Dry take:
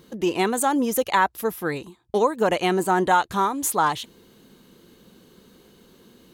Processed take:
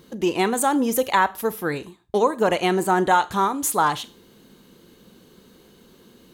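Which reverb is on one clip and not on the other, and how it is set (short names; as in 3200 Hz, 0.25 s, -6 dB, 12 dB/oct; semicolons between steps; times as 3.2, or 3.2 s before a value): Schroeder reverb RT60 0.34 s, combs from 27 ms, DRR 15.5 dB; gain +1 dB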